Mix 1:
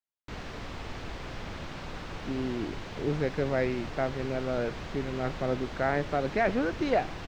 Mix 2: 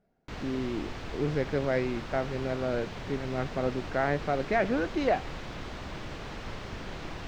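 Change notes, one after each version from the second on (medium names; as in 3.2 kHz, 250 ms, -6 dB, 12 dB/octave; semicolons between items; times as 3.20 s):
speech: entry -1.85 s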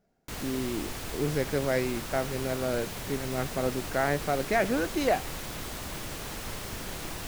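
master: remove distance through air 180 m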